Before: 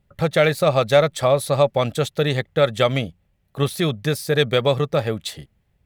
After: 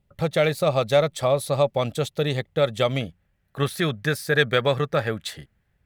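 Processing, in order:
parametric band 1,600 Hz −3.5 dB 0.67 octaves, from 0:03.01 +9.5 dB
level −3.5 dB

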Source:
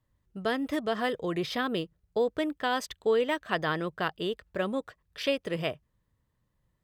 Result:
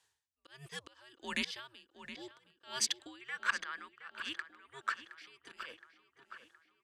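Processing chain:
brickwall limiter −21.5 dBFS, peak gain reduction 8.5 dB
frequency shifter −130 Hz
meter weighting curve ITU-R 468
downward compressor 3 to 1, threshold −35 dBFS, peak gain reduction 9 dB
volume swells 249 ms
0:03.21–0:05.26: flat-topped bell 1,600 Hz +12 dB 1.3 octaves
feedback echo with a low-pass in the loop 718 ms, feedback 61%, low-pass 3,900 Hz, level −11.5 dB
tremolo with a sine in dB 1.4 Hz, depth 25 dB
level +6 dB

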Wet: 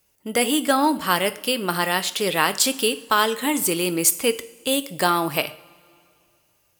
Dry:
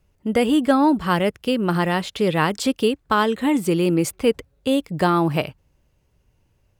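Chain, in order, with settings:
RIAA equalisation recording
coupled-rooms reverb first 0.48 s, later 2.4 s, from −18 dB, DRR 11 dB

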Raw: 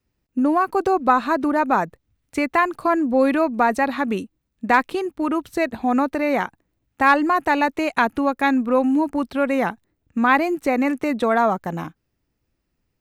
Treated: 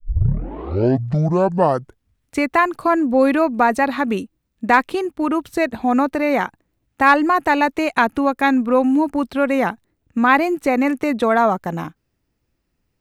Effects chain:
turntable start at the beginning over 2.32 s
pitch vibrato 0.32 Hz 10 cents
level +2.5 dB

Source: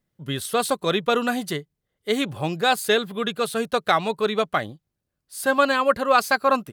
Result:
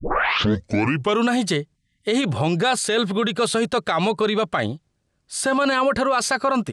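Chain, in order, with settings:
turntable start at the beginning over 1.25 s
time-frequency box erased 0:01.76–0:02.06, 280–1,700 Hz
in parallel at +1.5 dB: compressor whose output falls as the input rises −25 dBFS
on the sum: brickwall limiter −13.5 dBFS, peak gain reduction 9.5 dB
Butterworth low-pass 9,300 Hz 36 dB per octave
level +2 dB

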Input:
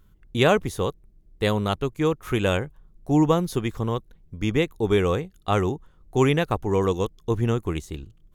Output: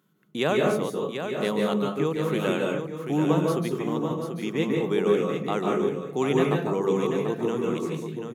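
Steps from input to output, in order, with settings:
elliptic high-pass filter 150 Hz, stop band 50 dB
in parallel at −2 dB: downward compressor, threshold −27 dBFS, peak gain reduction 13 dB
on the sum: single-tap delay 738 ms −7.5 dB
convolution reverb RT60 0.60 s, pre-delay 143 ms, DRR 0.5 dB
level −7.5 dB

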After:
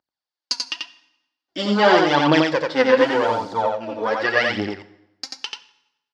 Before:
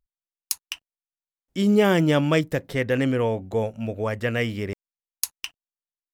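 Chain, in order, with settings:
0:02.96–0:03.52: background noise violet −40 dBFS
0:04.67–0:05.39: downward compressor 1.5 to 1, threshold −39 dBFS, peak gain reduction 7.5 dB
harmonic generator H 8 −23 dB, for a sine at −4.5 dBFS
phase shifter 0.87 Hz, delay 4.4 ms, feedback 68%
loudspeaker in its box 330–5,200 Hz, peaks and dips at 430 Hz −4 dB, 860 Hz +6 dB, 1,500 Hz +4 dB, 2,400 Hz −5 dB, 4,600 Hz +9 dB
single-tap delay 88 ms −3 dB
convolution reverb RT60 0.90 s, pre-delay 4 ms, DRR 12 dB
level +2.5 dB

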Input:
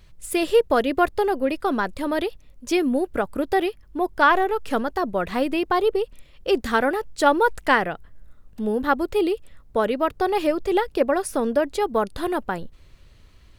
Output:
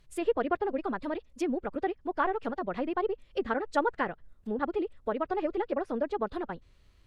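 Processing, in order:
treble cut that deepens with the level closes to 2,300 Hz, closed at −20 dBFS
phase-vocoder stretch with locked phases 0.52×
level −8 dB

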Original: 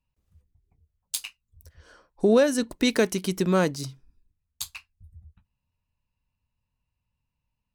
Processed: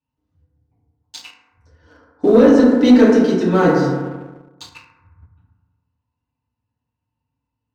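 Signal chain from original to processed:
high-shelf EQ 4,200 Hz −7 dB
feedback delay network reverb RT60 1.4 s, low-frequency decay 1.05×, high-frequency decay 0.3×, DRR −9.5 dB
in parallel at −1 dB: brickwall limiter −4 dBFS, peak gain reduction 7 dB
on the sum: loudspeaker in its box 100–6,000 Hz, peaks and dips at 170 Hz −4 dB, 250 Hz +7 dB, 2,300 Hz −6 dB
leveller curve on the samples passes 1
level −9 dB

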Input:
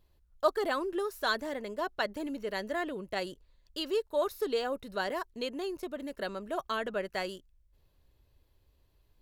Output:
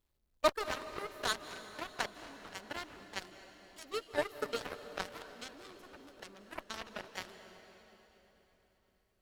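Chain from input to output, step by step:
feedback delay that plays each chunk backwards 119 ms, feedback 79%, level −11.5 dB
harmonic generator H 4 −38 dB, 5 −17 dB, 6 −31 dB, 7 −11 dB, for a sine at −13 dBFS
log-companded quantiser 8 bits
on a send: convolution reverb RT60 4.1 s, pre-delay 147 ms, DRR 11.5 dB
on the sum: level −2.5 dB

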